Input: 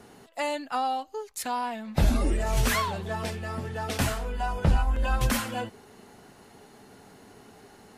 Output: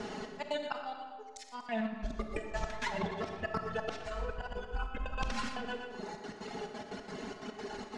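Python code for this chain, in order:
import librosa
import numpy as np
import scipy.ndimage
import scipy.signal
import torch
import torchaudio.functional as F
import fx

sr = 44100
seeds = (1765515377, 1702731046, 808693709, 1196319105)

p1 = fx.peak_eq(x, sr, hz=100.0, db=-2.5, octaves=1.6)
p2 = fx.transient(p1, sr, attack_db=-2, sustain_db=-7)
p3 = fx.dereverb_blind(p2, sr, rt60_s=1.3)
p4 = fx.level_steps(p3, sr, step_db=15)
p5 = p3 + (p4 * 10.0 ** (-2.0 / 20.0))
p6 = fx.step_gate(p5, sr, bpm=178, pattern='xxx.x.xxx.x.x.', floor_db=-60.0, edge_ms=4.5)
p7 = p6 + 0.53 * np.pad(p6, (int(4.7 * sr / 1000.0), 0))[:len(p6)]
p8 = fx.auto_swell(p7, sr, attack_ms=456.0)
p9 = p8 + fx.echo_feedback(p8, sr, ms=119, feedback_pct=45, wet_db=-12, dry=0)
p10 = fx.over_compress(p9, sr, threshold_db=-39.0, ratio=-0.5)
p11 = scipy.signal.sosfilt(scipy.signal.butter(4, 6600.0, 'lowpass', fs=sr, output='sos'), p10)
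p12 = fx.rev_freeverb(p11, sr, rt60_s=1.5, hf_ratio=0.6, predelay_ms=5, drr_db=5.0)
p13 = fx.doppler_dist(p12, sr, depth_ms=0.1)
y = p13 * 10.0 ** (4.0 / 20.0)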